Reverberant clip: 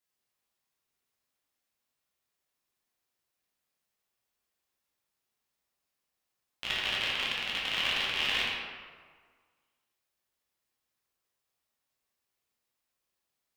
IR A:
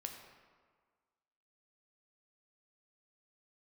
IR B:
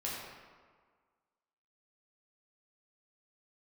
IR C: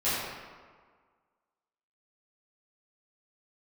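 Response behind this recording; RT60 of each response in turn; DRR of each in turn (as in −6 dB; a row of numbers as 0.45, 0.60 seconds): B; 1.6, 1.6, 1.6 seconds; 3.0, −6.0, −14.5 decibels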